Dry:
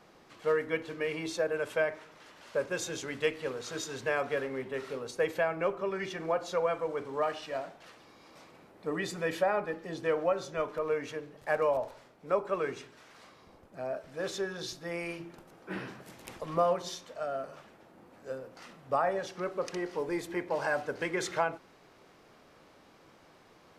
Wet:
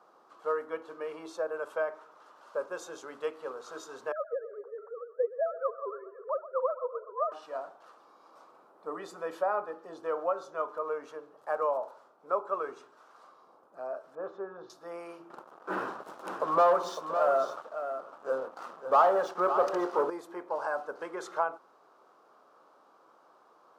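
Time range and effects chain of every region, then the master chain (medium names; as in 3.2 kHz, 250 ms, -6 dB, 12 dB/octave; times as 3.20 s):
4.12–7.32 s: formants replaced by sine waves + steep low-pass 1.5 kHz + two-band feedback delay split 480 Hz, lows 325 ms, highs 126 ms, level -15 dB
14.15–14.70 s: low-pass 1.4 kHz + bass shelf 160 Hz +6 dB
15.30–20.10 s: low-pass 3.9 kHz 6 dB/octave + waveshaping leveller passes 3 + delay 555 ms -9 dB
whole clip: high-pass 430 Hz 12 dB/octave; resonant high shelf 1.6 kHz -8 dB, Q 3; trim -2 dB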